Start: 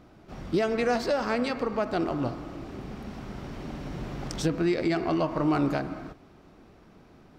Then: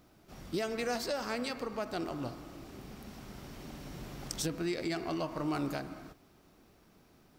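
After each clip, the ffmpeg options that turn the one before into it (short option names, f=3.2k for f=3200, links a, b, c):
-af "aemphasis=mode=production:type=75fm,volume=-8.5dB"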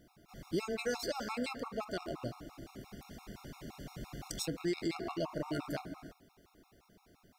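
-af "afftfilt=real='re*gt(sin(2*PI*5.8*pts/sr)*(1-2*mod(floor(b*sr/1024/710),2)),0)':imag='im*gt(sin(2*PI*5.8*pts/sr)*(1-2*mod(floor(b*sr/1024/710),2)),0)':win_size=1024:overlap=0.75,volume=1dB"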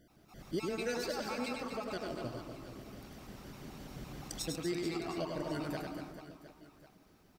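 -af "aecho=1:1:100|240|436|710.4|1095:0.631|0.398|0.251|0.158|0.1,volume=-2dB"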